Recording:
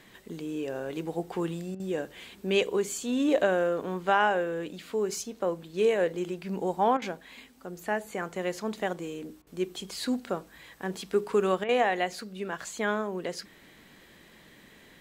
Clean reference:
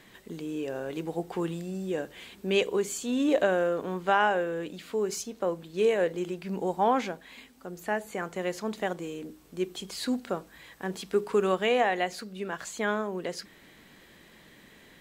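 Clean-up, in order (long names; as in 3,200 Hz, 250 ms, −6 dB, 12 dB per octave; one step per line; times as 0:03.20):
repair the gap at 0:01.75/0:06.97/0:09.42/0:11.64, 47 ms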